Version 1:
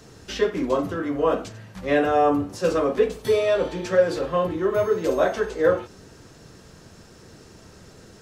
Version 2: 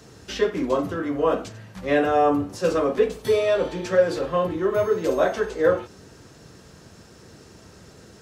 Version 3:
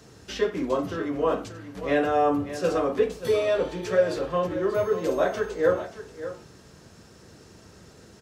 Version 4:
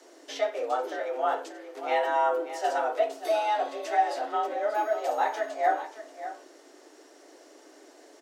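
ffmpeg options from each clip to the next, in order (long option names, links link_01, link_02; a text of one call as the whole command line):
ffmpeg -i in.wav -af "highpass=44" out.wav
ffmpeg -i in.wav -af "aecho=1:1:585:0.237,volume=-3dB" out.wav
ffmpeg -i in.wav -af "afreqshift=220,volume=-3dB" out.wav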